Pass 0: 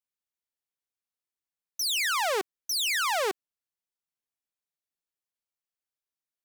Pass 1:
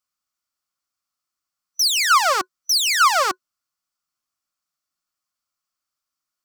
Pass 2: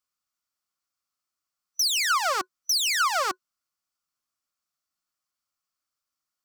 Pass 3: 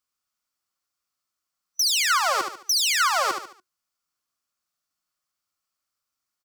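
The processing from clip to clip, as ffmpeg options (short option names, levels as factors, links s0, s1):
-af "superequalizer=7b=0.316:10b=3.16:14b=2:15b=1.58,volume=2"
-af "acompressor=threshold=0.112:ratio=6,volume=0.75"
-af "aecho=1:1:72|144|216|288:0.473|0.18|0.0683|0.026,volume=1.19"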